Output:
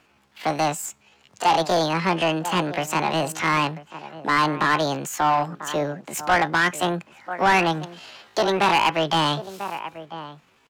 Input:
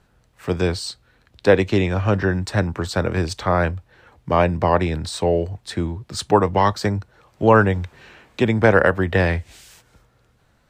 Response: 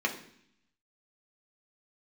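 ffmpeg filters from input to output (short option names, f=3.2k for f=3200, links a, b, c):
-filter_complex "[0:a]asetrate=76340,aresample=44100,atempo=0.577676,asplit=2[a][b];[b]adelay=991.3,volume=-17dB,highshelf=f=4k:g=-22.3[c];[a][c]amix=inputs=2:normalize=0,asplit=2[d][e];[e]highpass=f=720:p=1,volume=20dB,asoftclip=type=tanh:threshold=-1.5dB[f];[d][f]amix=inputs=2:normalize=0,lowpass=f=3.9k:p=1,volume=-6dB,volume=-8.5dB"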